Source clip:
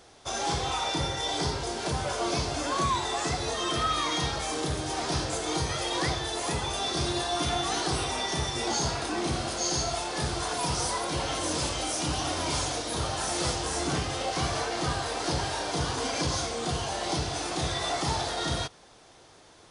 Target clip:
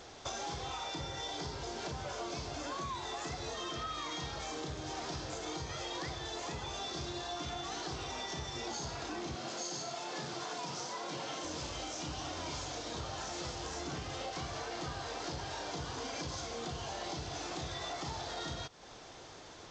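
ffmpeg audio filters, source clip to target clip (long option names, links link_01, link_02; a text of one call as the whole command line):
ffmpeg -i in.wav -filter_complex "[0:a]asettb=1/sr,asplit=3[link_01][link_02][link_03];[link_01]atrim=end=9.354[link_04];[link_02]atrim=start=9.35:end=11.45,asetpts=PTS-STARTPTS,afade=type=in:duration=0.004:curve=qsin,afade=type=out:start_time=2.096:duration=0.004:curve=qsin,highpass=frequency=140:width=0.5412,highpass=frequency=140:width=1.3066[link_05];[link_03]atrim=start=11.446[link_06];[link_04][link_05]acrossfade=duration=0.004:curve1=hsin:curve2=qsin[link_07];[link_07][link_06]acrossfade=duration=0.004:curve1=qsin:curve2=hsin,acompressor=threshold=-41dB:ratio=8,volume=3dB" -ar 16000 -c:a g722 out.g722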